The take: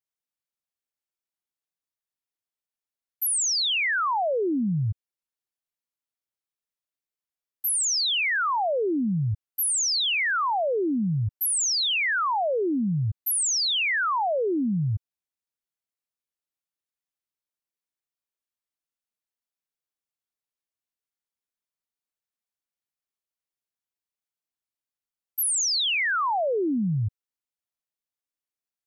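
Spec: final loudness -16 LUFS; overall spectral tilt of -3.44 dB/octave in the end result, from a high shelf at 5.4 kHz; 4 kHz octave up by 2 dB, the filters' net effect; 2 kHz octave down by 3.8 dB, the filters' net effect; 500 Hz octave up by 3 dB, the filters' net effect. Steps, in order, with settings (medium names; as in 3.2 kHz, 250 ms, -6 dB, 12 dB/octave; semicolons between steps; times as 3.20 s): peaking EQ 500 Hz +4 dB; peaking EQ 2 kHz -6 dB; peaking EQ 4 kHz +8 dB; treble shelf 5.4 kHz -9 dB; trim +8 dB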